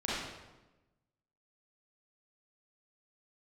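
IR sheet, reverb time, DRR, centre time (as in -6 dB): 1.1 s, -8.5 dB, 90 ms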